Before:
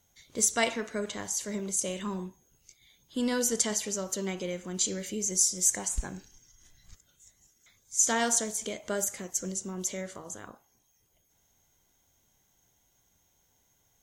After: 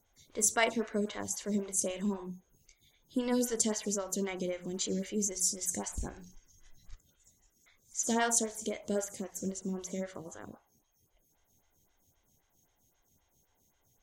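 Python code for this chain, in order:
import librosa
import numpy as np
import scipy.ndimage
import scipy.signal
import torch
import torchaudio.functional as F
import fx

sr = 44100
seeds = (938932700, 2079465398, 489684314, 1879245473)

y = fx.low_shelf(x, sr, hz=220.0, db=7.5)
y = fx.hum_notches(y, sr, base_hz=60, count=3)
y = fx.stagger_phaser(y, sr, hz=3.8)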